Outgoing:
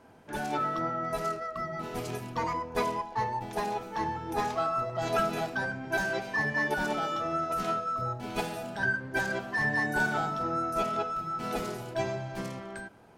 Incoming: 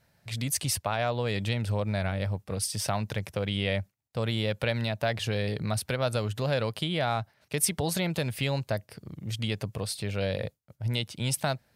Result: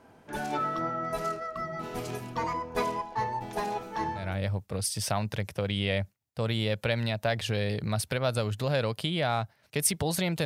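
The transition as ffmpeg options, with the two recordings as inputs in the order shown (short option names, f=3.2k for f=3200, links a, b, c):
-filter_complex "[0:a]apad=whole_dur=10.45,atrim=end=10.45,atrim=end=4.38,asetpts=PTS-STARTPTS[a];[1:a]atrim=start=1.88:end=8.23,asetpts=PTS-STARTPTS[b];[a][b]acrossfade=d=0.28:c1=tri:c2=tri"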